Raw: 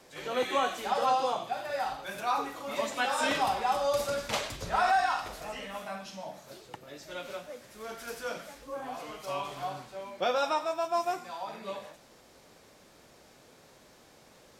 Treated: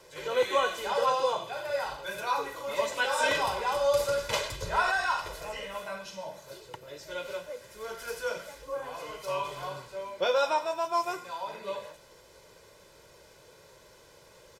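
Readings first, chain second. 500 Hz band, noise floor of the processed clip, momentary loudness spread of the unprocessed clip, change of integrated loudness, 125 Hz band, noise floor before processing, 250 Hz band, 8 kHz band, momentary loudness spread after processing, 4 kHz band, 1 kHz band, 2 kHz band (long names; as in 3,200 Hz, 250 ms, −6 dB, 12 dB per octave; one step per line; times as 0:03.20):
+3.0 dB, −56 dBFS, 16 LU, +1.0 dB, +1.5 dB, −58 dBFS, −5.0 dB, +1.5 dB, 14 LU, +2.0 dB, −1.0 dB, +3.0 dB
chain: comb filter 2 ms, depth 70%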